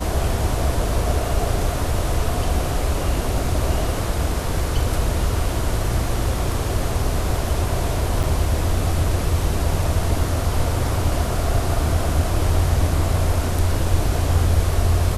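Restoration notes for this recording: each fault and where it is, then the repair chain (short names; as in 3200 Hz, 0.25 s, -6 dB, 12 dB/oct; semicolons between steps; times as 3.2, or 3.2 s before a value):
8.23–8.24 gap 5.5 ms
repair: interpolate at 8.23, 5.5 ms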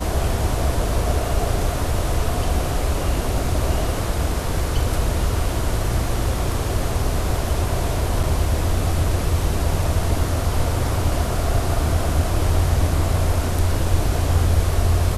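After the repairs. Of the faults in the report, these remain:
none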